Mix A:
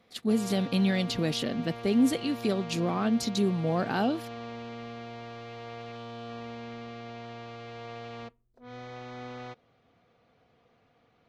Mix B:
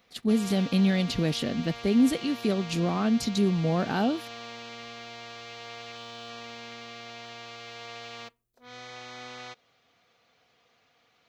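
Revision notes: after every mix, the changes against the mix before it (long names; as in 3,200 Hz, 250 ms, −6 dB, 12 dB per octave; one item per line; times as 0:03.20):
background: add spectral tilt +4.5 dB per octave
master: add low-shelf EQ 120 Hz +10 dB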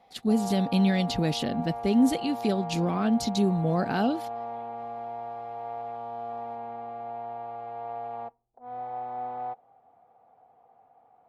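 background: add low-pass with resonance 800 Hz, resonance Q 10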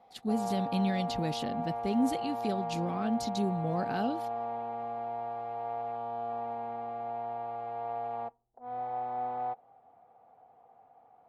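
speech −7.0 dB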